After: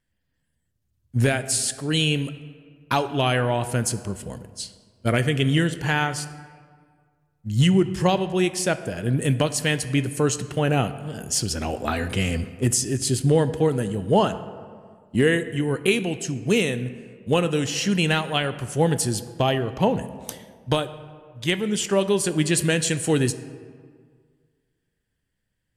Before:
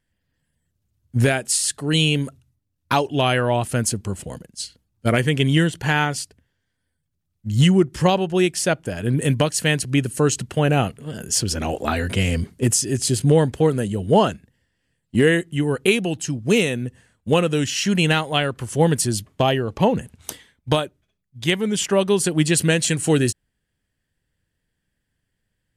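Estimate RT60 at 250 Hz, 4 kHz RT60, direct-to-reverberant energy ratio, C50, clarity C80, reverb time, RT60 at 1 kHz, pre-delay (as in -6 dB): 1.8 s, 1.1 s, 11.5 dB, 13.5 dB, 14.5 dB, 1.8 s, 1.8 s, 15 ms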